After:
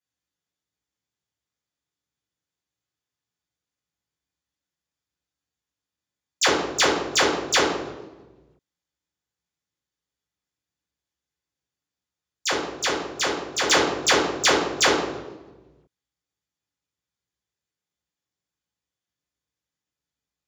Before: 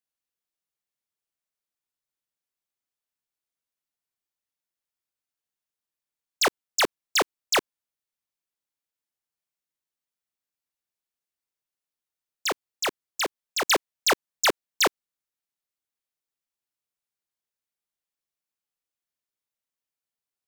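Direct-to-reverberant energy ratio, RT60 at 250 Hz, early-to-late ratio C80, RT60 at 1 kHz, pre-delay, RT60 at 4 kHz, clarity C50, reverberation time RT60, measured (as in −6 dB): −7.0 dB, 1.7 s, 6.0 dB, 1.0 s, 3 ms, 0.75 s, 3.0 dB, 1.2 s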